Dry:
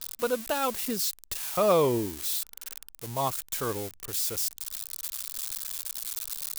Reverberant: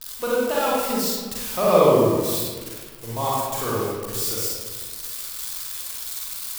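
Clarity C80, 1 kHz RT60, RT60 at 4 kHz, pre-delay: 0.5 dB, 1.5 s, 0.85 s, 35 ms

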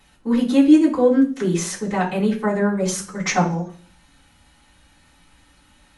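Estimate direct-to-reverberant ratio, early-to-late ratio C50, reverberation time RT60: -11.5 dB, 10.0 dB, 0.45 s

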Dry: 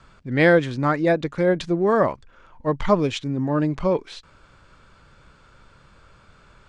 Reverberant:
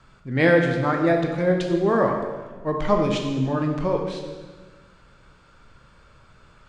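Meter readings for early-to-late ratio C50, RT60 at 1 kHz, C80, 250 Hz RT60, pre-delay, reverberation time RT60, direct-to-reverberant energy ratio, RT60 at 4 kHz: 4.5 dB, 1.3 s, 6.0 dB, 1.7 s, 10 ms, 1.4 s, 1.5 dB, 1.2 s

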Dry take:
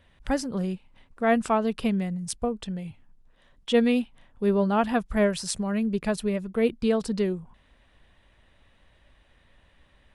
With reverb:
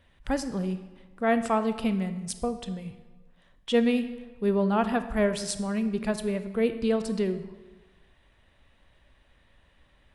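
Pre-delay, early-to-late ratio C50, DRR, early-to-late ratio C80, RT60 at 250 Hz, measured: 25 ms, 11.5 dB, 10.0 dB, 13.0 dB, 1.3 s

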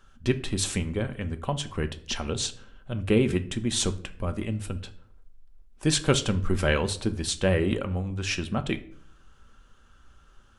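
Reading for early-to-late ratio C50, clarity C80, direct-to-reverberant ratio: 16.0 dB, 19.5 dB, 8.0 dB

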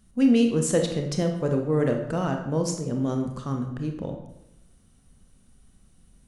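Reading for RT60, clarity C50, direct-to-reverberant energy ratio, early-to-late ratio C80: 0.85 s, 6.0 dB, 3.5 dB, 9.0 dB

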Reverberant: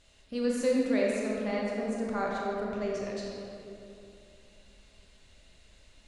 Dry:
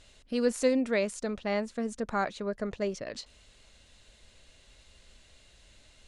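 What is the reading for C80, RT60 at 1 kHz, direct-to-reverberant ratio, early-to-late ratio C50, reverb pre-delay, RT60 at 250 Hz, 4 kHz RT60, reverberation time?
-0.5 dB, 2.6 s, -4.0 dB, -2.0 dB, 20 ms, 3.4 s, 1.5 s, 2.8 s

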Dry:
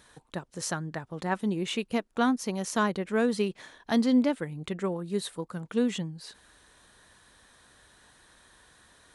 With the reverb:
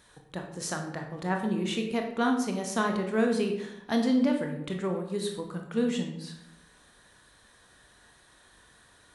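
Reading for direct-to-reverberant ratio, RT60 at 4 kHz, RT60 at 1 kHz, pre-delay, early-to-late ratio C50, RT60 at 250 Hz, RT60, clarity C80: 2.5 dB, 0.55 s, 0.75 s, 19 ms, 6.5 dB, 1.0 s, 0.80 s, 9.0 dB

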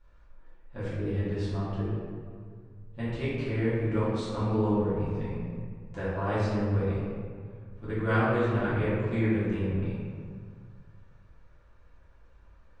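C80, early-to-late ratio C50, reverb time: 0.0 dB, -2.5 dB, 1.9 s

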